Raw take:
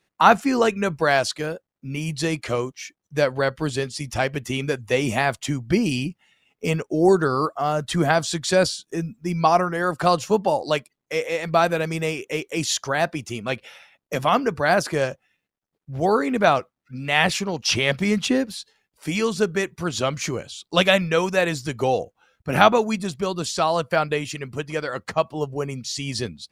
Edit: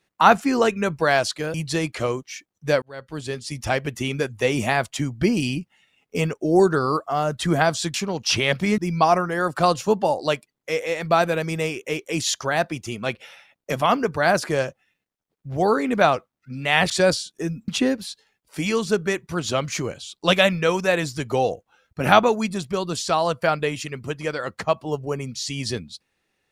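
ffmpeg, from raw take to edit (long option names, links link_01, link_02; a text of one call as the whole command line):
ffmpeg -i in.wav -filter_complex "[0:a]asplit=7[link_01][link_02][link_03][link_04][link_05][link_06][link_07];[link_01]atrim=end=1.542[link_08];[link_02]atrim=start=2.028:end=3.31,asetpts=PTS-STARTPTS,afade=type=out:start_time=1.278:duration=0.004:curve=hsin[link_09];[link_03]atrim=start=3.31:end=8.432,asetpts=PTS-STARTPTS,afade=type=in:duration=0.78[link_10];[link_04]atrim=start=17.328:end=18.172[link_11];[link_05]atrim=start=9.208:end=17.332[link_12];[link_06]atrim=start=8.428:end=9.212[link_13];[link_07]atrim=start=18.168[link_14];[link_09][link_10]concat=n=2:v=0:a=1[link_15];[link_08][link_15]acrossfade=duration=0.004:curve1=hsin:curve2=hsin[link_16];[link_16][link_11]acrossfade=duration=0.004:curve1=hsin:curve2=hsin[link_17];[link_17][link_12]acrossfade=duration=0.004:curve1=hsin:curve2=hsin[link_18];[link_18][link_13]acrossfade=duration=0.004:curve1=hsin:curve2=hsin[link_19];[link_19][link_14]acrossfade=duration=0.004:curve1=hsin:curve2=hsin" out.wav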